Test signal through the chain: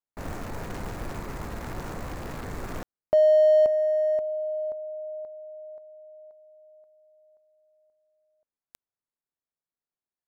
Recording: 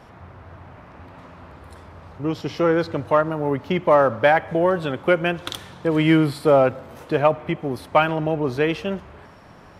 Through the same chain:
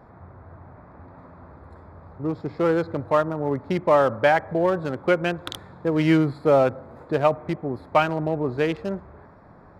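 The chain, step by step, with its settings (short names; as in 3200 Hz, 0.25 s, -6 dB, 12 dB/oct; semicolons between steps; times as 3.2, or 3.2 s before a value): Wiener smoothing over 15 samples; gain -2 dB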